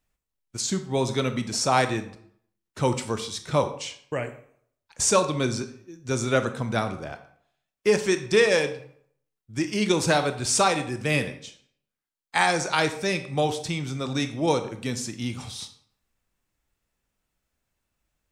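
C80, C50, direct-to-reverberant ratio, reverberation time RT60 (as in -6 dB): 15.0 dB, 11.5 dB, 8.5 dB, 0.60 s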